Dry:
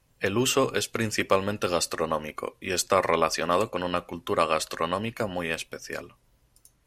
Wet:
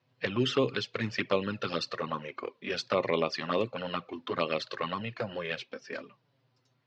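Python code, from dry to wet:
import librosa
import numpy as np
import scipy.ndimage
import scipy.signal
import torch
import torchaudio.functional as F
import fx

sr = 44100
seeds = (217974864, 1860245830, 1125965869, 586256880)

y = fx.env_flanger(x, sr, rest_ms=8.2, full_db=-18.5)
y = scipy.signal.sosfilt(scipy.signal.ellip(3, 1.0, 40, [120.0, 4500.0], 'bandpass', fs=sr, output='sos'), y)
y = fx.dynamic_eq(y, sr, hz=790.0, q=1.5, threshold_db=-42.0, ratio=4.0, max_db=-6)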